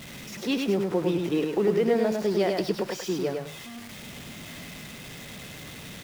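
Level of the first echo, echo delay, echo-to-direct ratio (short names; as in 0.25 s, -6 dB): -4.0 dB, 0.102 s, -4.0 dB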